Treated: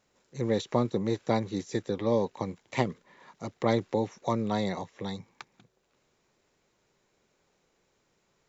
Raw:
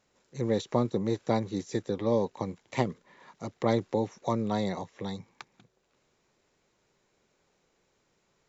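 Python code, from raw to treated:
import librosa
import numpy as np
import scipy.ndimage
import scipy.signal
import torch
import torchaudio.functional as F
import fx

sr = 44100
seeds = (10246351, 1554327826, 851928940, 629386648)

y = fx.dynamic_eq(x, sr, hz=2400.0, q=0.74, threshold_db=-47.0, ratio=4.0, max_db=3)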